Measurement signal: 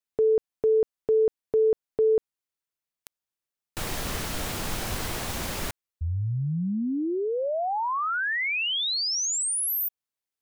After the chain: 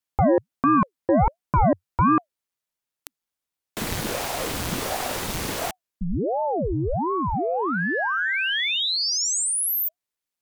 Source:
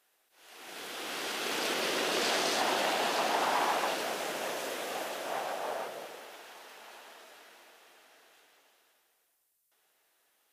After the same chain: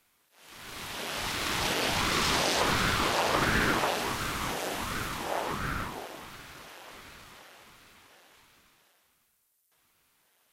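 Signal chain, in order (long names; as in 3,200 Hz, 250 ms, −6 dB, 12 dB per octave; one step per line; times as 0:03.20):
harmonic generator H 2 −10 dB, 4 −20 dB, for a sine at −15.5 dBFS
ring modulator whose carrier an LFO sweeps 420 Hz, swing 80%, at 1.4 Hz
level +6 dB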